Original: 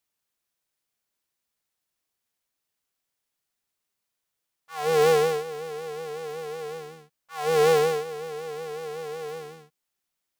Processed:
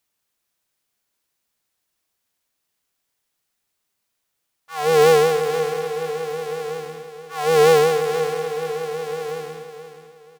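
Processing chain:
repeating echo 478 ms, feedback 33%, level −10 dB
level +6 dB

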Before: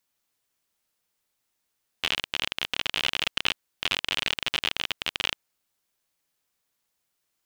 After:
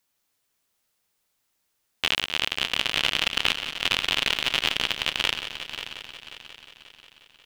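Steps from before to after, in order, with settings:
echo machine with several playback heads 179 ms, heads first and third, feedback 59%, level −11.5 dB
level +3 dB

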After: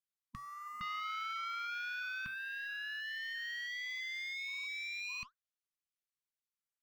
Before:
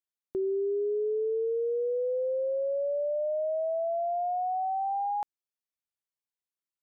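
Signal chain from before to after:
treble cut that deepens with the level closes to 800 Hz
parametric band 350 Hz −13.5 dB 0.89 octaves, from 0:00.81 880 Hz, from 0:02.26 370 Hz
leveller curve on the samples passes 3
flanger 1.5 Hz, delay 2.4 ms, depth 6.6 ms, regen +83%
linear-phase brick-wall band-stop 240–1,000 Hz
level +6.5 dB

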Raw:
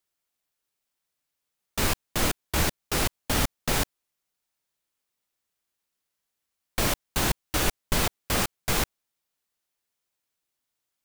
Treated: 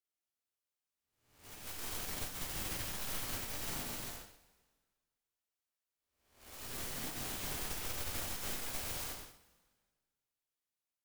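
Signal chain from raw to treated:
spectrum smeared in time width 548 ms
tube saturation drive 44 dB, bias 0.65
brickwall limiter −43 dBFS, peak gain reduction 4.5 dB
0:03.70–0:07.28: parametric band 160 Hz −10.5 dB 0.77 octaves
wrap-around overflow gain 47 dB
dense smooth reverb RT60 1.6 s, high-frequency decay 0.95×, DRR −2 dB
expander for the loud parts 2.5 to 1, over −56 dBFS
level +8.5 dB

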